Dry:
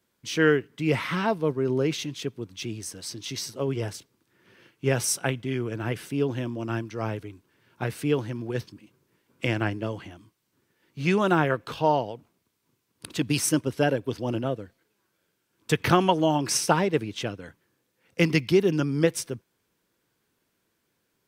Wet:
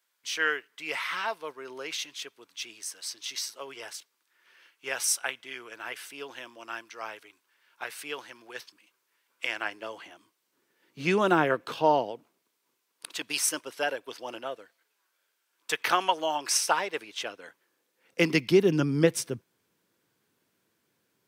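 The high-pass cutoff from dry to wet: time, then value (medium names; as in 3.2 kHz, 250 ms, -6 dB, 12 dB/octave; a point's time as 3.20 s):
9.50 s 1 kHz
11.01 s 240 Hz
12.03 s 240 Hz
13.19 s 770 Hz
17.09 s 770 Hz
18.34 s 230 Hz
18.83 s 100 Hz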